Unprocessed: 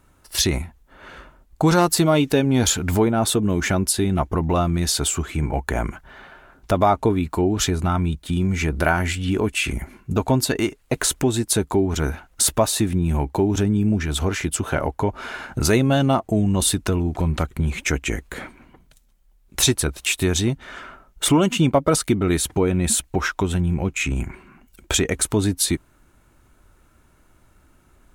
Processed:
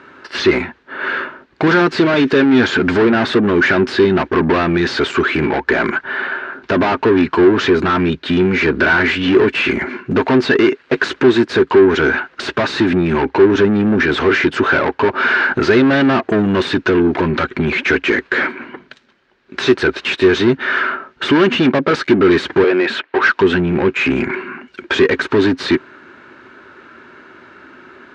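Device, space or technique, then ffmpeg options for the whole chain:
overdrive pedal into a guitar cabinet: -filter_complex "[0:a]asettb=1/sr,asplit=3[a][b][c];[a]atrim=end=22.644[d];[b]atrim=start=22.64:end=23.23,asetpts=PTS-STARTPTS,afade=t=in:d=0.004:c=qsin,afade=t=out:st=0.586:d=0.004:c=qsin,acrossover=split=340 3400:gain=0.0708 1 0.0891[e][f][g];[e][f][g]amix=inputs=3:normalize=0[h];[c]atrim=start=23.226[i];[d][h]acrossfade=d=0.004:c1=hsin:c2=qsin[j];[j][i]acrossfade=d=0.004:c1=qsin:c2=hsin,asplit=2[k][l];[l]highpass=f=720:p=1,volume=31dB,asoftclip=type=tanh:threshold=-4.5dB[m];[k][m]amix=inputs=2:normalize=0,lowpass=f=7k:p=1,volume=-6dB,highpass=100,equalizer=f=250:t=q:w=4:g=7,equalizer=f=380:t=q:w=4:g=10,equalizer=f=740:t=q:w=4:g=-5,equalizer=f=1.6k:t=q:w=4:g=8,equalizer=f=3.4k:t=q:w=4:g=-3,lowpass=f=4.1k:w=0.5412,lowpass=f=4.1k:w=1.3066,volume=-4.5dB"

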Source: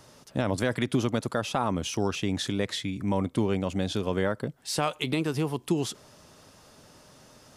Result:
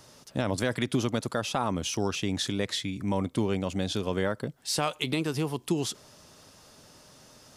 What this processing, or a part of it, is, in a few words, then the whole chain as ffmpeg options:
presence and air boost: -af "equalizer=f=5k:t=o:w=1.6:g=3.5,highshelf=f=11k:g=4.5,volume=-1.5dB"

